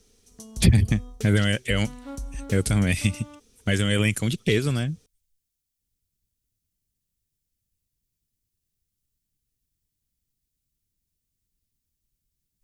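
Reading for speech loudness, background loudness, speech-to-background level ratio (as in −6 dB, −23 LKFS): −23.5 LKFS, −40.0 LKFS, 16.5 dB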